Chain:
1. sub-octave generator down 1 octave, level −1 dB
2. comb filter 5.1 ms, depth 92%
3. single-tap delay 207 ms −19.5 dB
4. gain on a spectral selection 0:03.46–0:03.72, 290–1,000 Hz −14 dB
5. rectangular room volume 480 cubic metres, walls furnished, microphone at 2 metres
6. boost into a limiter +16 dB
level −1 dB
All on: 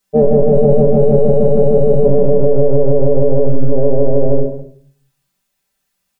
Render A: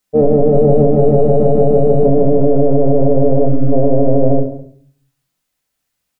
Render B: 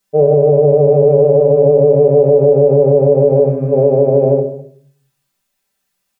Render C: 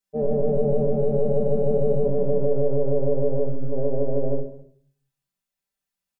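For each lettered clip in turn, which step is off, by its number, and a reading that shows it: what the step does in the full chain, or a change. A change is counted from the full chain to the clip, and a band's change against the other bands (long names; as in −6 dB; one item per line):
2, 1 kHz band +4.0 dB
1, 250 Hz band −5.5 dB
6, change in crest factor +3.5 dB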